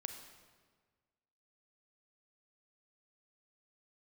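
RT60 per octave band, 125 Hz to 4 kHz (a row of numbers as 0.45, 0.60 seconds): 1.8, 1.6, 1.6, 1.5, 1.3, 1.2 seconds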